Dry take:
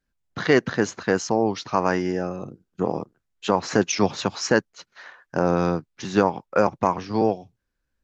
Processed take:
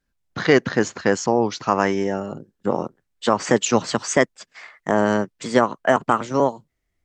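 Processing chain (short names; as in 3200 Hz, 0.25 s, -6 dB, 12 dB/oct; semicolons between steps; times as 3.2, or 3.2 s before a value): speed glide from 100% -> 128%; gain +2.5 dB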